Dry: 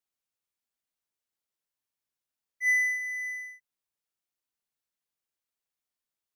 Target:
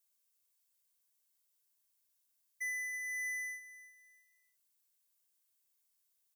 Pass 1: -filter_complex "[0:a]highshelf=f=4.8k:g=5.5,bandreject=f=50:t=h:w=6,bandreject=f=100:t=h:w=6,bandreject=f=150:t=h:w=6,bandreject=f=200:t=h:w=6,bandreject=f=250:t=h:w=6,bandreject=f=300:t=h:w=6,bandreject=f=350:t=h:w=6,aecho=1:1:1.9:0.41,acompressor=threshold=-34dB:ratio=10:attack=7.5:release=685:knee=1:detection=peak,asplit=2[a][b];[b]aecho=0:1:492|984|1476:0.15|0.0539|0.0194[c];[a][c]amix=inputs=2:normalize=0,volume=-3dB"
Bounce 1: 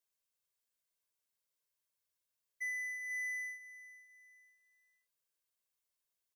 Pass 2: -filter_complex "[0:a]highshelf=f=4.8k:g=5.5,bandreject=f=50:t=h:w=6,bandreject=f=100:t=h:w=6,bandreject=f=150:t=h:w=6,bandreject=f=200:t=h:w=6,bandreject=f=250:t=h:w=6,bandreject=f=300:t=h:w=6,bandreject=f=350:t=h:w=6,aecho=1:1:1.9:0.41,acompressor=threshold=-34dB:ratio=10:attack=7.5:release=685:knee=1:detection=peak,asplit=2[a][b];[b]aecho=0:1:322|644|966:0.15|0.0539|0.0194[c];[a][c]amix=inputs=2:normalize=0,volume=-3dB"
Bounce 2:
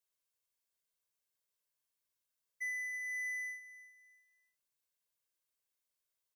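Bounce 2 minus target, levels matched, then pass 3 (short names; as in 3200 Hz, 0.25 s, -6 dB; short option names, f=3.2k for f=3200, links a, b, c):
8000 Hz band -5.0 dB
-filter_complex "[0:a]highshelf=f=4.8k:g=16.5,bandreject=f=50:t=h:w=6,bandreject=f=100:t=h:w=6,bandreject=f=150:t=h:w=6,bandreject=f=200:t=h:w=6,bandreject=f=250:t=h:w=6,bandreject=f=300:t=h:w=6,bandreject=f=350:t=h:w=6,aecho=1:1:1.9:0.41,acompressor=threshold=-34dB:ratio=10:attack=7.5:release=685:knee=1:detection=peak,asplit=2[a][b];[b]aecho=0:1:322|644|966:0.15|0.0539|0.0194[c];[a][c]amix=inputs=2:normalize=0,volume=-3dB"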